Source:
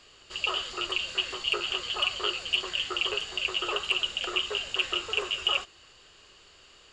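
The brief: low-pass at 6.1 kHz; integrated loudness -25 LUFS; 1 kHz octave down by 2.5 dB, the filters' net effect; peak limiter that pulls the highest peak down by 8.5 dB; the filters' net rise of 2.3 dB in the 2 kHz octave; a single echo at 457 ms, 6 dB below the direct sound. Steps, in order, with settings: low-pass 6.1 kHz; peaking EQ 1 kHz -5.5 dB; peaking EQ 2 kHz +5 dB; peak limiter -18.5 dBFS; delay 457 ms -6 dB; trim +4 dB

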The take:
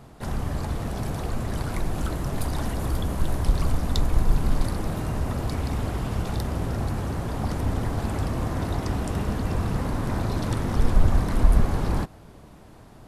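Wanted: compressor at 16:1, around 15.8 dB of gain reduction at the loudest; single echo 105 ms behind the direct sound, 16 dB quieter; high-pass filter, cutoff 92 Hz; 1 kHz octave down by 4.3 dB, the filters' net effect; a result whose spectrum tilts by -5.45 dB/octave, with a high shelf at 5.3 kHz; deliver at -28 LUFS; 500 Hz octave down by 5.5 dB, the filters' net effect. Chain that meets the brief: high-pass 92 Hz; peaking EQ 500 Hz -6.5 dB; peaking EQ 1 kHz -3.5 dB; treble shelf 5.3 kHz +4 dB; compression 16:1, threshold -36 dBFS; delay 105 ms -16 dB; trim +13 dB

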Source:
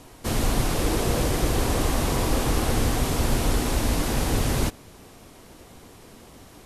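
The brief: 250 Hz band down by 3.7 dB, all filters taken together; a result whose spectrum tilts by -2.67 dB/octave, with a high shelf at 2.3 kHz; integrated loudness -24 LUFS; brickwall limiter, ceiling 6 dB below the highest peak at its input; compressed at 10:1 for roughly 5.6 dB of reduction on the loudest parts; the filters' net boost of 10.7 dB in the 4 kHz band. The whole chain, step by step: peaking EQ 250 Hz -5 dB; treble shelf 2.3 kHz +8.5 dB; peaking EQ 4 kHz +5.5 dB; compression 10:1, threshold -22 dBFS; trim +3.5 dB; peak limiter -15 dBFS

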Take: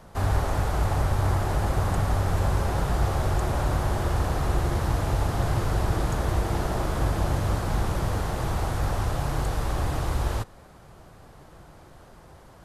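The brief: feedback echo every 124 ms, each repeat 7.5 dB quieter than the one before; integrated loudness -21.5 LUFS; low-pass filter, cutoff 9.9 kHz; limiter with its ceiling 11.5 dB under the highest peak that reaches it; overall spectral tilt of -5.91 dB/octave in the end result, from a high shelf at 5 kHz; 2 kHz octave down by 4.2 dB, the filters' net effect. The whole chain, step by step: low-pass 9.9 kHz; peaking EQ 2 kHz -6.5 dB; treble shelf 5 kHz +5 dB; peak limiter -23.5 dBFS; feedback delay 124 ms, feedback 42%, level -7.5 dB; trim +10.5 dB

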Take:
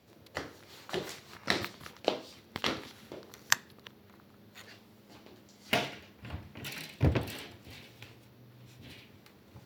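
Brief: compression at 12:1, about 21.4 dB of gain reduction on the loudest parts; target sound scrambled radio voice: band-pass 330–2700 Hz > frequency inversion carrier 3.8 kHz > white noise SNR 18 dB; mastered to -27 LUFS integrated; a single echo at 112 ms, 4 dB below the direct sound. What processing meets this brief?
compression 12:1, threshold -45 dBFS; band-pass 330–2700 Hz; delay 112 ms -4 dB; frequency inversion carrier 3.8 kHz; white noise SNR 18 dB; trim +25.5 dB

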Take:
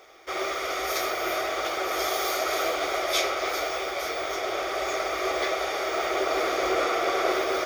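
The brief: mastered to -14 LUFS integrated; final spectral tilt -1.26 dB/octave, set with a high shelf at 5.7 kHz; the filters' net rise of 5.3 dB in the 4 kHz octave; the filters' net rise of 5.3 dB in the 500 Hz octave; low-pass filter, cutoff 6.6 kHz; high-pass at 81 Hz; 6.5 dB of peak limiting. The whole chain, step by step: high-pass 81 Hz; low-pass 6.6 kHz; peaking EQ 500 Hz +7 dB; peaking EQ 4 kHz +8.5 dB; treble shelf 5.7 kHz -4 dB; trim +10.5 dB; peak limiter -4.5 dBFS

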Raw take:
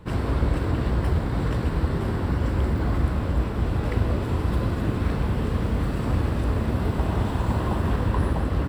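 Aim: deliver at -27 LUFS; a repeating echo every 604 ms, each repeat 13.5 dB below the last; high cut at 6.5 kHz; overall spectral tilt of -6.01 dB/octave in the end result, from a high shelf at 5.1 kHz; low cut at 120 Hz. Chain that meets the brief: high-pass 120 Hz; low-pass 6.5 kHz; treble shelf 5.1 kHz -3 dB; feedback delay 604 ms, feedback 21%, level -13.5 dB; trim +1.5 dB

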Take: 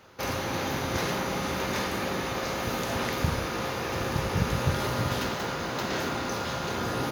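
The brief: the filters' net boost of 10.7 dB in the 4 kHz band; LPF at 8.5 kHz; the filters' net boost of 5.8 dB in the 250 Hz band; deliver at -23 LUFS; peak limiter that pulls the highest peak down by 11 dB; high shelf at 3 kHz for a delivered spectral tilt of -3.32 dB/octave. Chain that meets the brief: low-pass 8.5 kHz; peaking EQ 250 Hz +7.5 dB; treble shelf 3 kHz +7 dB; peaking EQ 4 kHz +8 dB; trim +4.5 dB; peak limiter -15 dBFS

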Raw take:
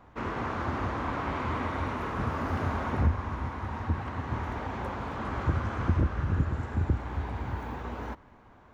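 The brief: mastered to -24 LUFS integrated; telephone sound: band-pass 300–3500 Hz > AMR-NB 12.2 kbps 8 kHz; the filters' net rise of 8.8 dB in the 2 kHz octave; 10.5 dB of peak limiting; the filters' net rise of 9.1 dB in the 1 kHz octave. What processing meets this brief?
peaking EQ 1 kHz +8.5 dB; peaking EQ 2 kHz +8.5 dB; peak limiter -20.5 dBFS; band-pass 300–3500 Hz; trim +8 dB; AMR-NB 12.2 kbps 8 kHz

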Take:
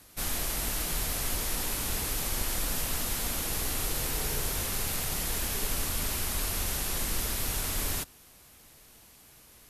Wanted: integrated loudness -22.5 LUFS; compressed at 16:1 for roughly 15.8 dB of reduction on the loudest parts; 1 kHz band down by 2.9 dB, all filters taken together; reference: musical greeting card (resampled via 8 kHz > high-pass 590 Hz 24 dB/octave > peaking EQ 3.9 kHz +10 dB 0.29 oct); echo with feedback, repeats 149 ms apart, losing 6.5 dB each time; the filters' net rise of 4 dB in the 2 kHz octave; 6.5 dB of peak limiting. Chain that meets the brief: peaking EQ 1 kHz -5.5 dB; peaking EQ 2 kHz +6 dB; compression 16:1, threshold -42 dBFS; peak limiter -37.5 dBFS; feedback delay 149 ms, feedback 47%, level -6.5 dB; resampled via 8 kHz; high-pass 590 Hz 24 dB/octave; peaking EQ 3.9 kHz +10 dB 0.29 oct; trim +29 dB

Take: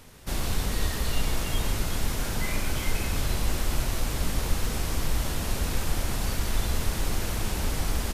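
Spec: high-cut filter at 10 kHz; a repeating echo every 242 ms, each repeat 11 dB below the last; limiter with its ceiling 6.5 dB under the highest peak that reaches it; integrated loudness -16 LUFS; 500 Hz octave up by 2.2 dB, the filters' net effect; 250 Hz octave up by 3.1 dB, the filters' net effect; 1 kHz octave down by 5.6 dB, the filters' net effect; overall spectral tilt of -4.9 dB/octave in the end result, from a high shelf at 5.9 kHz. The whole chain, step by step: low-pass 10 kHz; peaking EQ 250 Hz +3.5 dB; peaking EQ 500 Hz +4 dB; peaking EQ 1 kHz -9 dB; treble shelf 5.9 kHz -5.5 dB; peak limiter -18.5 dBFS; feedback delay 242 ms, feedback 28%, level -11 dB; trim +15.5 dB

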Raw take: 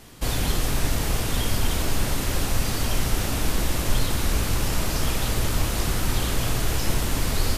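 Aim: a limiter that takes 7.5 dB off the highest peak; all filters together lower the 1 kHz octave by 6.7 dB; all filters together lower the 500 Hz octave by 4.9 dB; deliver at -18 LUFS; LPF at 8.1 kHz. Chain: low-pass 8.1 kHz; peaking EQ 500 Hz -4.5 dB; peaking EQ 1 kHz -7.5 dB; trim +11.5 dB; peak limiter -5.5 dBFS

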